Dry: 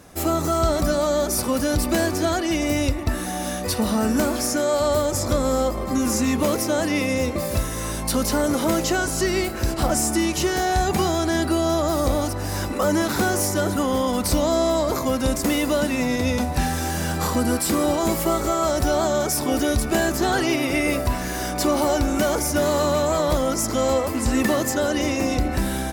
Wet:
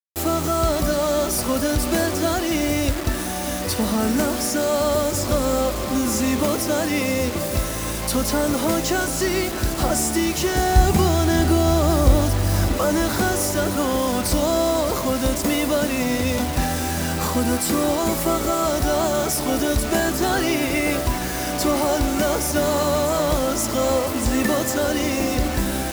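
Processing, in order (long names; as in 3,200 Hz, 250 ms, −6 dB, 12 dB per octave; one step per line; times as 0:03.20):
0:10.55–0:12.76: low-shelf EQ 180 Hz +11 dB
echo machine with several playback heads 307 ms, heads second and third, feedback 48%, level −16 dB
bit reduction 5 bits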